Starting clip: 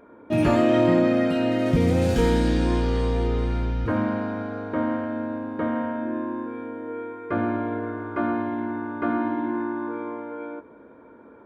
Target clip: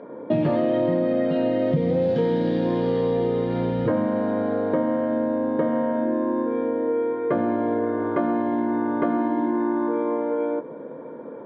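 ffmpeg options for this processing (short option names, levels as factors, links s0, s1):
-af "highpass=f=130:w=0.5412,highpass=f=130:w=1.3066,equalizer=f=150:t=q:w=4:g=9,equalizer=f=520:t=q:w=4:g=9,equalizer=f=1400:t=q:w=4:g=-8,equalizer=f=2500:t=q:w=4:g=-9,lowpass=f=3700:w=0.5412,lowpass=f=3700:w=1.3066,acompressor=threshold=0.0398:ratio=6,volume=2.66"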